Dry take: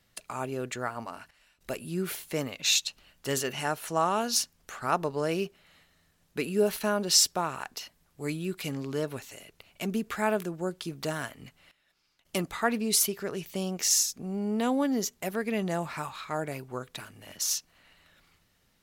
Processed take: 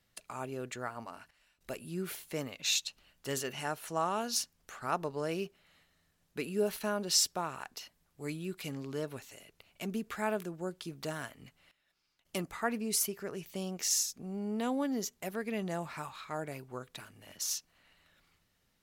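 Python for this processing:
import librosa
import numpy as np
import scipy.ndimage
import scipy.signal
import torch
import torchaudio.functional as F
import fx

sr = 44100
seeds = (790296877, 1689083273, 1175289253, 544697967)

y = fx.peak_eq(x, sr, hz=3700.0, db=-6.5, octaves=0.49, at=(12.44, 13.43))
y = y * 10.0 ** (-6.0 / 20.0)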